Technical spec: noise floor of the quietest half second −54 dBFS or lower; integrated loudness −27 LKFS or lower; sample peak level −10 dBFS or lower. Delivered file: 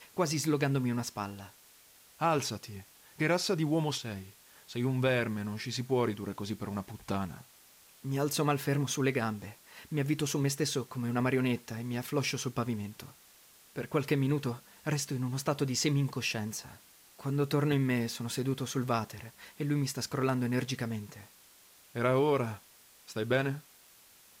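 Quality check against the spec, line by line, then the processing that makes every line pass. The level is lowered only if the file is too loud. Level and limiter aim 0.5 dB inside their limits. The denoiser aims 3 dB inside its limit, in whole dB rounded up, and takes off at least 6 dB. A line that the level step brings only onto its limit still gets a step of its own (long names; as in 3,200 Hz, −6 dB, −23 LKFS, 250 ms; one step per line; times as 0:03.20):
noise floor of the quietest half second −59 dBFS: in spec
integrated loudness −32.5 LKFS: in spec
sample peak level −15.5 dBFS: in spec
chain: no processing needed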